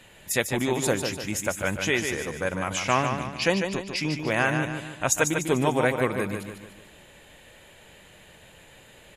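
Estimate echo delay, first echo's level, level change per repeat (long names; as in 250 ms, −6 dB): 148 ms, −6.5 dB, −7.0 dB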